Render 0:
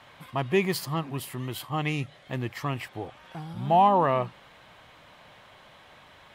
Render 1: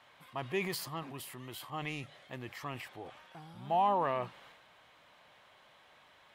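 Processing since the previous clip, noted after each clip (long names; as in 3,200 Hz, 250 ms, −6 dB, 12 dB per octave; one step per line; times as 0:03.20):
low-shelf EQ 240 Hz −9.5 dB
transient designer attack 0 dB, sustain +6 dB
level −8.5 dB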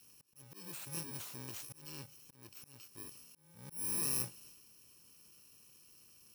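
samples in bit-reversed order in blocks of 64 samples
volume swells 522 ms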